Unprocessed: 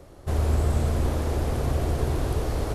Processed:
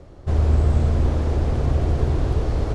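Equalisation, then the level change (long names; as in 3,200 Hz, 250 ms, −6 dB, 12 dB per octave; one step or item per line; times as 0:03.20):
Bessel low-pass filter 5,700 Hz, order 4
low-shelf EQ 300 Hz +6 dB
0.0 dB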